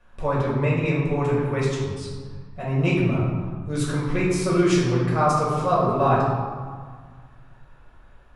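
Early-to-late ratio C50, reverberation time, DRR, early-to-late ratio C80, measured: 0.0 dB, 1.7 s, -7.0 dB, 2.5 dB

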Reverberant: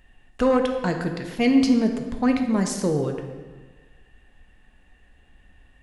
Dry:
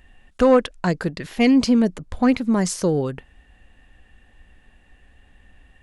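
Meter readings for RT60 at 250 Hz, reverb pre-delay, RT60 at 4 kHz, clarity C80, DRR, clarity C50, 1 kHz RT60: 1.5 s, 3 ms, 1.1 s, 8.0 dB, 4.0 dB, 6.5 dB, 1.4 s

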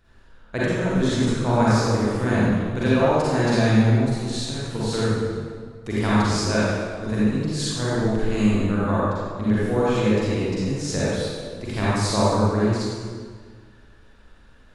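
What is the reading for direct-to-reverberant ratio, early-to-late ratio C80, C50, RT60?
-10.0 dB, -3.0 dB, -7.5 dB, 1.7 s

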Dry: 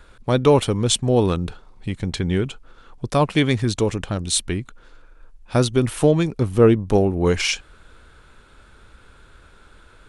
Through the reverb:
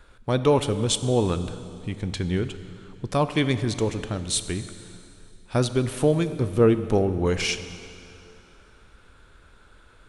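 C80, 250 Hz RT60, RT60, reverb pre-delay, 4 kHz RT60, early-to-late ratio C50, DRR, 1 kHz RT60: 12.5 dB, 2.7 s, 2.7 s, 5 ms, 2.5 s, 12.0 dB, 10.5 dB, 2.7 s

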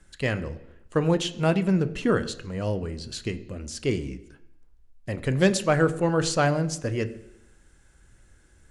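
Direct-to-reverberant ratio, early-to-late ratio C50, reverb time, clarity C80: 11.0 dB, 16.0 dB, 0.85 s, 17.5 dB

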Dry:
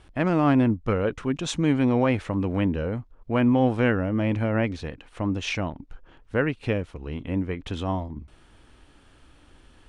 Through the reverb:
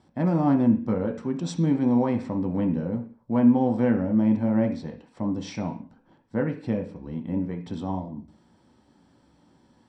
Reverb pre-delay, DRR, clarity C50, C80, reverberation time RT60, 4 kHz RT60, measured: 3 ms, 2.5 dB, 11.0 dB, 16.0 dB, 0.45 s, no reading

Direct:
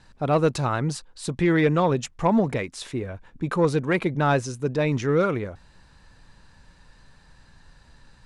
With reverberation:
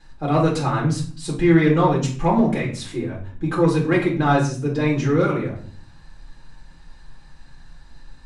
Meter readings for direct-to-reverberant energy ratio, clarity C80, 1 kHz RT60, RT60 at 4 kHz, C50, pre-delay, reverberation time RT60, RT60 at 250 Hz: -5.0 dB, 12.5 dB, 0.40 s, 0.35 s, 7.5 dB, 4 ms, 0.45 s, 0.80 s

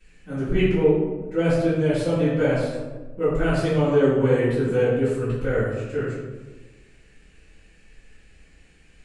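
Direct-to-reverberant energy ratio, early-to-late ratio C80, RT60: -16.0 dB, 2.5 dB, 1.3 s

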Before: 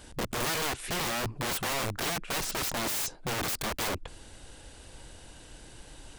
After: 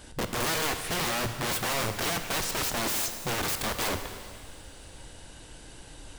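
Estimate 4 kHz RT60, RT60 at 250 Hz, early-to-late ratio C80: 1.9 s, 1.9 s, 9.0 dB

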